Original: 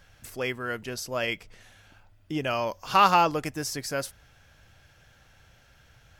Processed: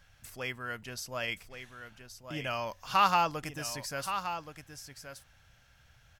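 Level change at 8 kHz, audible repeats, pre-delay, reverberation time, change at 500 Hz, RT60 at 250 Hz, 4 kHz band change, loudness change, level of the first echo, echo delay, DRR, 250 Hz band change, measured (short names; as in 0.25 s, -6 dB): -4.0 dB, 1, none, none, -8.5 dB, none, -4.0 dB, -6.0 dB, -9.5 dB, 1.124 s, none, -9.0 dB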